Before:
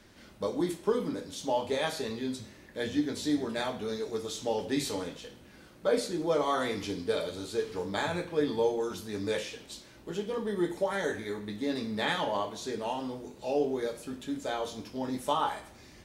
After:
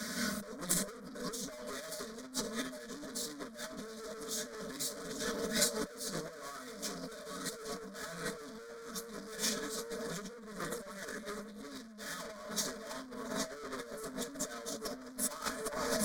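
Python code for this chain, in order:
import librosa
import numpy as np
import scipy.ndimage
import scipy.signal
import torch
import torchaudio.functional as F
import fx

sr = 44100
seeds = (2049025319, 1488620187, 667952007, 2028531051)

y = scipy.signal.sosfilt(scipy.signal.butter(4, 74.0, 'highpass', fs=sr, output='sos'), x)
y = y + 0.97 * np.pad(y, (int(4.7 * sr / 1000.0), 0))[:len(y)]
y = fx.echo_alternate(y, sr, ms=406, hz=940.0, feedback_pct=82, wet_db=-10.0)
y = fx.tube_stage(y, sr, drive_db=37.0, bias=0.5)
y = fx.high_shelf(y, sr, hz=8100.0, db=-4.5)
y = fx.fixed_phaser(y, sr, hz=550.0, stages=8)
y = y + 10.0 ** (-22.0 / 20.0) * np.pad(y, (int(690 * sr / 1000.0), 0))[:len(y)]
y = fx.over_compress(y, sr, threshold_db=-49.0, ratio=-0.5)
y = fx.high_shelf(y, sr, hz=2500.0, db=10.5)
y = F.gain(torch.from_numpy(y), 8.0).numpy()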